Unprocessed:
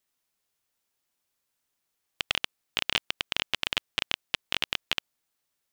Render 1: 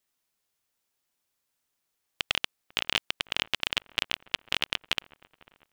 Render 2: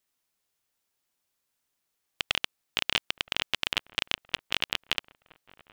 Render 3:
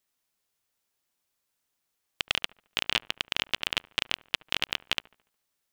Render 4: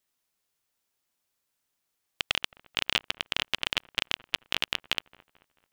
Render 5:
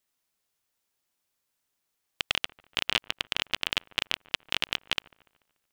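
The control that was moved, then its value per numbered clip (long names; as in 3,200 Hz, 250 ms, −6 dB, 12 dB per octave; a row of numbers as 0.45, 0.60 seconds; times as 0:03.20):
delay with a low-pass on its return, delay time: 497, 970, 72, 219, 145 milliseconds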